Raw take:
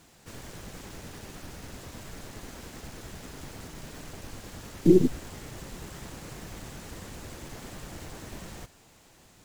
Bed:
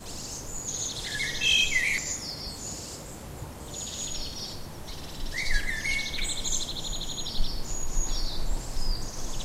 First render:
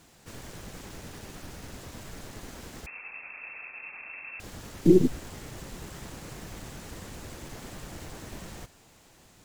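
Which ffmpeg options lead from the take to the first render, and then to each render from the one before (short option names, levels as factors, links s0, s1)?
-filter_complex "[0:a]asettb=1/sr,asplit=3[s0][s1][s2];[s0]atrim=end=2.864[s3];[s1]atrim=start=2.86:end=4.4,asetpts=PTS-STARTPTS,afade=t=in:d=0.004:c=qsin,afade=t=out:st=1.536:d=0.004:c=qsin,lowpass=f=2300:t=q:w=0.5098,lowpass=f=2300:t=q:w=0.6013,lowpass=f=2300:t=q:w=0.9,lowpass=f=2300:t=q:w=2.563,afreqshift=-2700[s4];[s2]atrim=start=4.396[s5];[s3][s4]acrossfade=d=0.004:c1=hsin:c2=qsin[s6];[s6][s5]acrossfade=d=0.004:c1=qsin:c2=hsin"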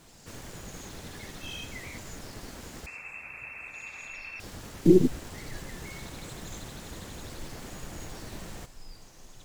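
-filter_complex "[1:a]volume=0.112[s0];[0:a][s0]amix=inputs=2:normalize=0"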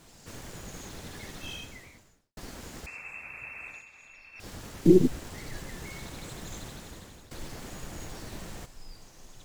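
-filter_complex "[0:a]asplit=5[s0][s1][s2][s3][s4];[s0]atrim=end=2.37,asetpts=PTS-STARTPTS,afade=t=out:st=1.5:d=0.87:c=qua[s5];[s1]atrim=start=2.37:end=3.85,asetpts=PTS-STARTPTS,afade=t=in:d=0.004:c=hsin,afade=t=out:st=1.34:d=0.14:silence=0.298538[s6];[s2]atrim=start=3.85:end=4.33,asetpts=PTS-STARTPTS,volume=0.299[s7];[s3]atrim=start=4.33:end=7.31,asetpts=PTS-STARTPTS,afade=t=in:d=0.14:silence=0.298538,afade=t=out:st=2.33:d=0.65:silence=0.199526[s8];[s4]atrim=start=7.31,asetpts=PTS-STARTPTS,afade=t=in:d=0.004:c=hsin:silence=0.199526[s9];[s5][s6][s7][s8][s9]concat=n=5:v=0:a=1"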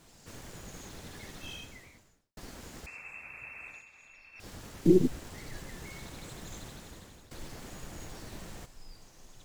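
-af "volume=0.668"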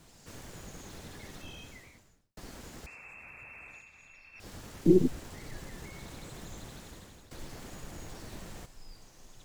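-filter_complex "[0:a]acrossover=split=200|1200[s0][s1][s2];[s0]acompressor=mode=upward:threshold=0.00126:ratio=2.5[s3];[s2]alimiter=level_in=8.91:limit=0.0631:level=0:latency=1:release=32,volume=0.112[s4];[s3][s1][s4]amix=inputs=3:normalize=0"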